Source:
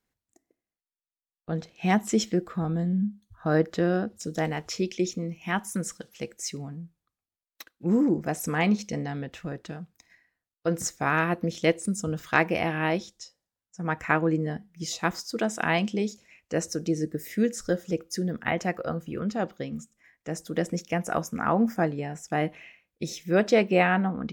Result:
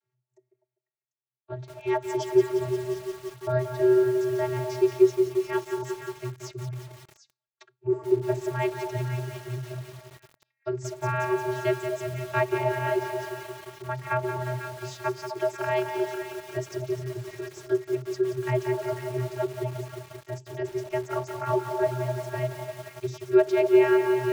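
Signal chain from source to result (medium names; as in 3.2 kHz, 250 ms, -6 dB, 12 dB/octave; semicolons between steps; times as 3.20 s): repeats whose band climbs or falls 249 ms, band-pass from 720 Hz, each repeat 1.4 oct, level -6 dB; vocoder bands 32, square 126 Hz; bit-crushed delay 177 ms, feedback 80%, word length 7-bit, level -7.5 dB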